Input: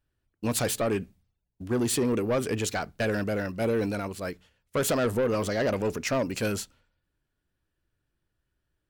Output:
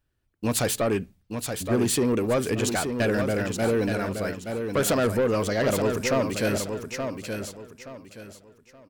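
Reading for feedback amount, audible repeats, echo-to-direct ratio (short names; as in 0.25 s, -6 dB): 29%, 3, -6.0 dB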